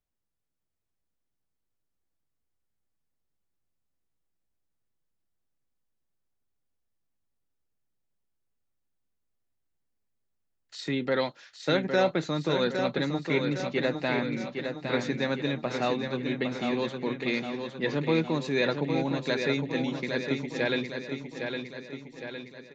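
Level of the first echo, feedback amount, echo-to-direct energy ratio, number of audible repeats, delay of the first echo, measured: −6.0 dB, 54%, −4.5 dB, 6, 810 ms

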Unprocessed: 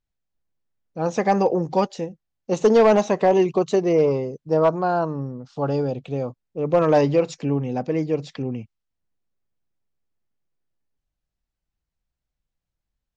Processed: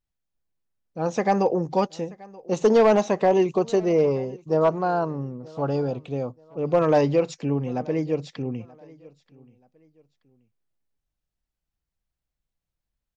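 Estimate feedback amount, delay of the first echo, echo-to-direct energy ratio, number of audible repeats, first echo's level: 31%, 930 ms, −22.5 dB, 2, −23.0 dB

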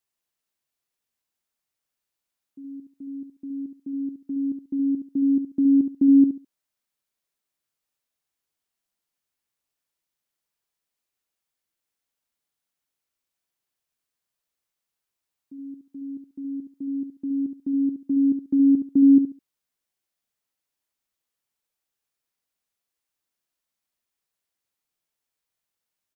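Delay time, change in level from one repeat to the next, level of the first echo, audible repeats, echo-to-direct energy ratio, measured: 69 ms, −13.0 dB, −8.0 dB, 3, −8.0 dB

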